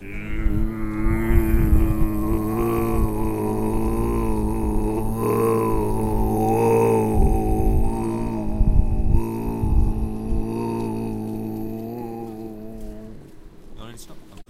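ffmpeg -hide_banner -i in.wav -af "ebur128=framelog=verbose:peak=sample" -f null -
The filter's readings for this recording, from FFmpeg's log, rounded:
Integrated loudness:
  I:         -23.1 LUFS
  Threshold: -33.7 LUFS
Loudness range:
  LRA:         8.6 LU
  Threshold: -43.3 LUFS
  LRA low:   -29.5 LUFS
  LRA high:  -20.9 LUFS
Sample peak:
  Peak:       -3.0 dBFS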